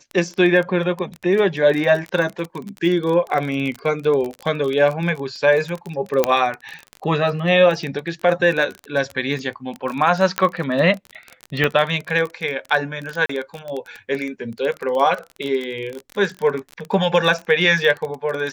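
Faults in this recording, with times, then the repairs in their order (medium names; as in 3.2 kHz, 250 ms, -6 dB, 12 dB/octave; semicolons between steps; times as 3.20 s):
crackle 25 per s -23 dBFS
6.24 s: pop -2 dBFS
10.38 s: pop -2 dBFS
11.64 s: pop -7 dBFS
13.26–13.29 s: dropout 34 ms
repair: de-click; interpolate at 13.26 s, 34 ms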